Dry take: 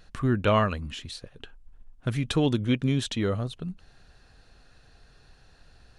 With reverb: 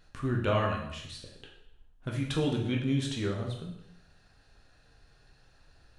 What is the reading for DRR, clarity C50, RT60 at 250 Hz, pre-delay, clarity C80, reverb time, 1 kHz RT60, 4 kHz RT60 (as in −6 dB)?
−0.5 dB, 5.0 dB, 0.80 s, 6 ms, 8.0 dB, 0.80 s, 0.80 s, 0.75 s